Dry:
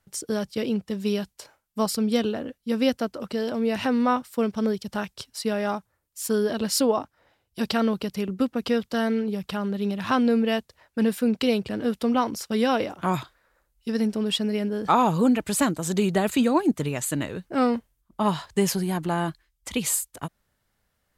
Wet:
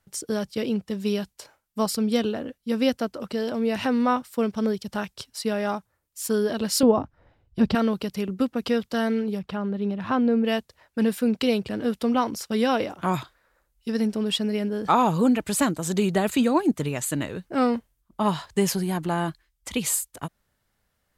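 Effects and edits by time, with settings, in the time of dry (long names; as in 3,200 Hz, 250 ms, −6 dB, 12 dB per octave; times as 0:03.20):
0:06.83–0:07.75: RIAA equalisation playback
0:09.38–0:10.43: low-pass filter 1,800 Hz → 1,100 Hz 6 dB per octave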